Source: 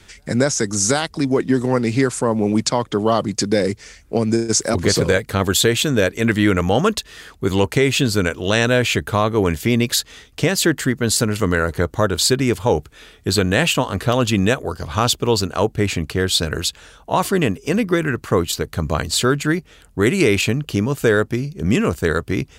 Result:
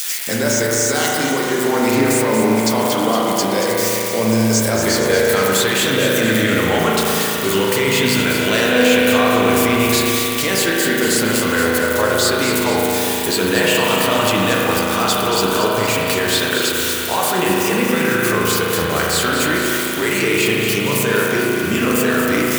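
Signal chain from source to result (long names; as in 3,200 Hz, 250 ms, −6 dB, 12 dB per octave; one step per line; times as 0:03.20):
spike at every zero crossing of −20 dBFS
high-pass filter 630 Hz 6 dB per octave
in parallel at +2 dB: compressor whose output falls as the input rises −26 dBFS
on the sum: flanger 0.5 Hz, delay 7.2 ms, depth 6.3 ms, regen +44%
on a send: delay that swaps between a low-pass and a high-pass 116 ms, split 910 Hz, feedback 78%, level −5.5 dB
on the sum: spring reverb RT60 3.1 s, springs 36 ms, chirp 75 ms, DRR −3 dB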